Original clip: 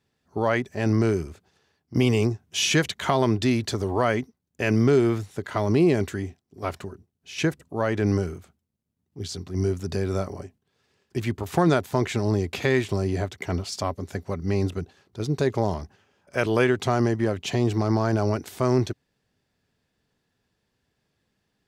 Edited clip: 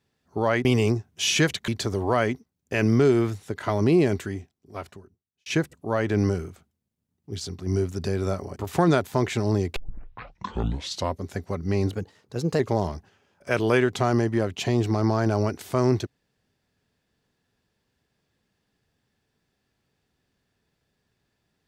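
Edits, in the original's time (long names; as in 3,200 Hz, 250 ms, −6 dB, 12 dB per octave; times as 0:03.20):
0:00.65–0:02.00: remove
0:03.03–0:03.56: remove
0:05.95–0:07.34: fade out
0:10.44–0:11.35: remove
0:12.55: tape start 1.41 s
0:14.69–0:15.46: play speed 111%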